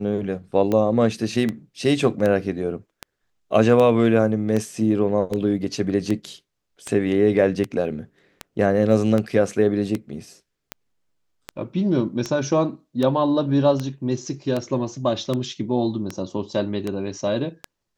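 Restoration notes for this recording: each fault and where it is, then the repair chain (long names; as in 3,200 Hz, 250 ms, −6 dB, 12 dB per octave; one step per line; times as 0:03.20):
scratch tick 78 rpm −12 dBFS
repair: click removal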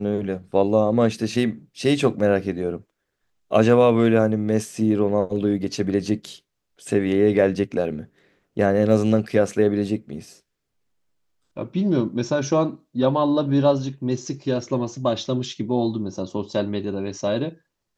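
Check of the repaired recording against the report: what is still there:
none of them is left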